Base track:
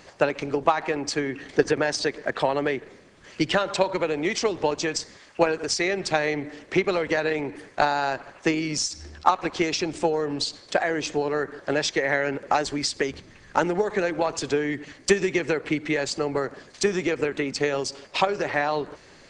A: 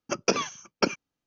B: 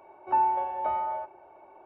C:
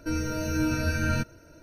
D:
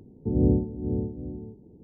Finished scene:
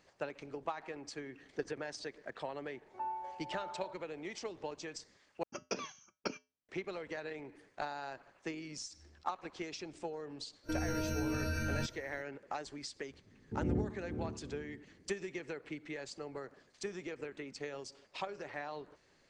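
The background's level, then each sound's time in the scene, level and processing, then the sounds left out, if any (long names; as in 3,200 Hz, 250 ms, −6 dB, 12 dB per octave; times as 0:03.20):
base track −18.5 dB
0:02.67: mix in B −16 dB
0:05.43: overwrite with A −10 dB + tuned comb filter 86 Hz, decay 0.26 s, harmonics odd, mix 50%
0:10.63: mix in C −3.5 dB, fades 0.05 s + downward compressor, threshold −28 dBFS
0:13.26: mix in D −13 dB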